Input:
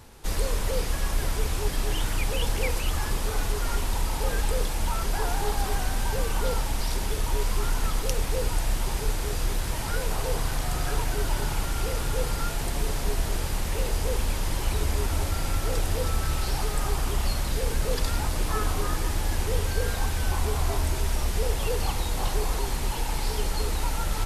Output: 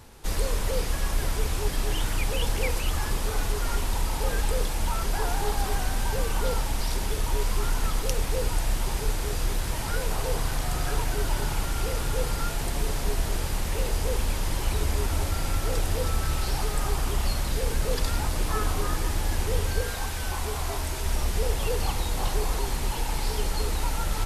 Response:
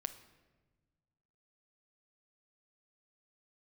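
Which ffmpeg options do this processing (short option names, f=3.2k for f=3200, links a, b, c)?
-filter_complex "[0:a]asettb=1/sr,asplit=3[a][b][c];[a]atrim=end=19.824[d];[b]atrim=start=19.82:end=21.06,asetpts=PTS-STARTPTS,afade=t=in:d=0.004:c=qsin,afade=t=out:st=1.236:d=0.004:c=qsin,lowshelf=f=440:g=-5.5[e];[c]atrim=start=21.056[f];[d][e]acrossfade=d=0.004:c1=hsin:c2=qsin[g];[g][f]acrossfade=d=0.004:c1=qsin:c2=hsin"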